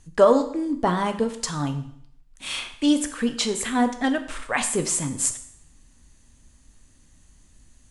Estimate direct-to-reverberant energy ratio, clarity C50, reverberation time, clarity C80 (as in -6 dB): 7.0 dB, 11.5 dB, 0.65 s, 13.5 dB